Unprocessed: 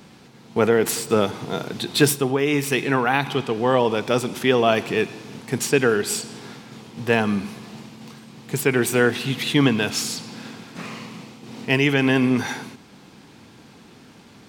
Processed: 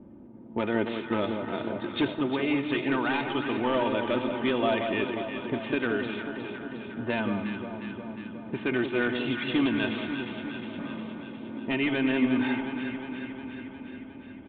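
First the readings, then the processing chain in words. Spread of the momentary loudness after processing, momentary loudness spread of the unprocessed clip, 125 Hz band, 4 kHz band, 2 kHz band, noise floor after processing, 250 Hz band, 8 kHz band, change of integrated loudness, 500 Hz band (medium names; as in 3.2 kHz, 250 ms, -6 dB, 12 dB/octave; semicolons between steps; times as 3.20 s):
13 LU, 19 LU, -12.0 dB, -9.0 dB, -7.0 dB, -44 dBFS, -4.0 dB, under -40 dB, -8.5 dB, -8.5 dB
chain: level-controlled noise filter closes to 430 Hz, open at -15.5 dBFS; comb 3.3 ms, depth 66%; compression 1.5:1, threshold -39 dBFS, peak gain reduction 10.5 dB; wavefolder -18.5 dBFS; echo whose repeats swap between lows and highs 179 ms, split 1.1 kHz, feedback 81%, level -5.5 dB; resampled via 8 kHz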